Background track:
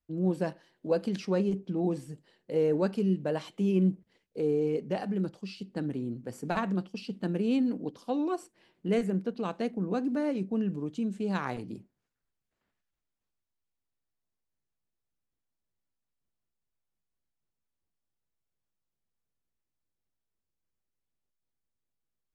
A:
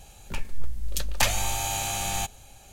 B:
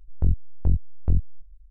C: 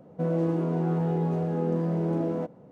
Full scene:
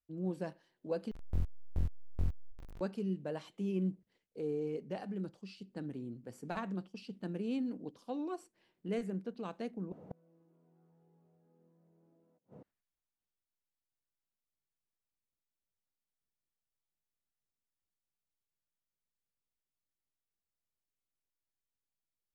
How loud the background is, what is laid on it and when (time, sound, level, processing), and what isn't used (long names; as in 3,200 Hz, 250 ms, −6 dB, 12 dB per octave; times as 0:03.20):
background track −9 dB
0:01.11: overwrite with B −13.5 dB + converter with a step at zero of −29.5 dBFS
0:09.92: overwrite with C −3 dB + gate with flip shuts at −30 dBFS, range −40 dB
not used: A